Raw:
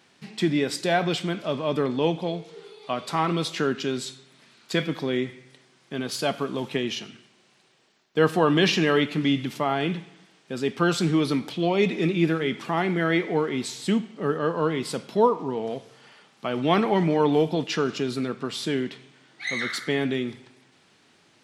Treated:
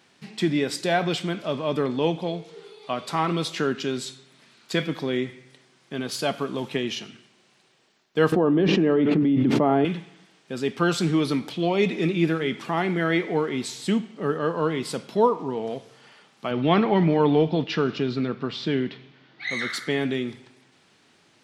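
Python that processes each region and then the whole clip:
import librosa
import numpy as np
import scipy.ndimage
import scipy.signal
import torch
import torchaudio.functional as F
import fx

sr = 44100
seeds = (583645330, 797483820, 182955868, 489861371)

y = fx.chain(x, sr, fx.bandpass_q(hz=300.0, q=0.94),
    fx.env_flatten(amount_pct=100), at=(8.32, 9.85))
y = fx.chain(y, sr, fx.lowpass(hz=4700.0, slope=24),
    fx.low_shelf(hz=180.0, db=6.5), at=(16.51, 19.51))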